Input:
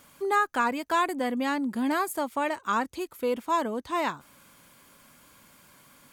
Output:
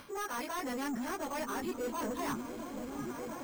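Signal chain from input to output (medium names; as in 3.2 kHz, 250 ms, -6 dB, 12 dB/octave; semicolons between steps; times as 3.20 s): every event in the spectrogram widened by 60 ms; reverse; compression 16:1, threshold -31 dBFS, peak gain reduction 14.5 dB; reverse; plain phase-vocoder stretch 0.56×; resampled via 8 kHz; saturation -38 dBFS, distortion -10 dB; on a send: delay with an opening low-pass 698 ms, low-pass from 200 Hz, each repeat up 1 oct, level 0 dB; on the sum: careless resampling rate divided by 6×, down none, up hold; trim +5 dB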